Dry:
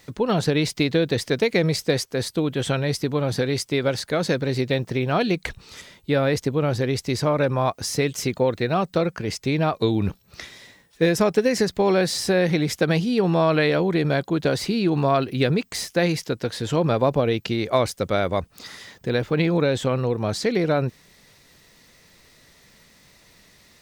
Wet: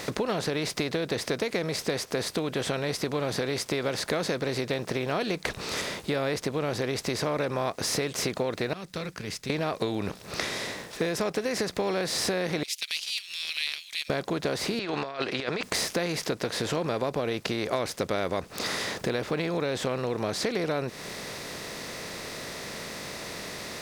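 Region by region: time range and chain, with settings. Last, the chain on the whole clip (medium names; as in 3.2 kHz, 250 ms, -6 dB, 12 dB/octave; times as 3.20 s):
8.73–9.50 s: amplifier tone stack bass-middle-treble 6-0-2 + band-stop 340 Hz, Q 7.9
12.63–14.10 s: steep high-pass 2.6 kHz 48 dB/octave + transient shaper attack -1 dB, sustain -9 dB
14.79–15.63 s: band-pass filter 2.8 kHz, Q 0.54 + distance through air 120 m + compressor with a negative ratio -35 dBFS, ratio -0.5
whole clip: spectral levelling over time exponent 0.6; compression 6:1, threshold -24 dBFS; bass shelf 220 Hz -6.5 dB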